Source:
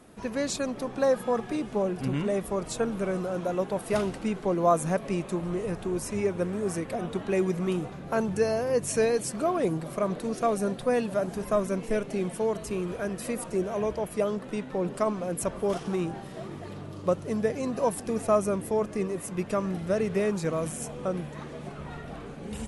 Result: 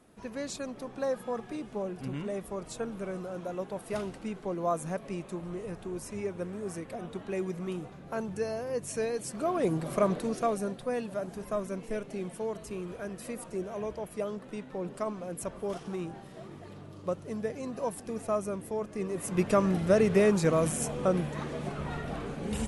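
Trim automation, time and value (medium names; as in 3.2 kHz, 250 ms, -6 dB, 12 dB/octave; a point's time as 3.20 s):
9.13 s -7.5 dB
9.99 s +2.5 dB
10.81 s -7 dB
18.91 s -7 dB
19.39 s +3.5 dB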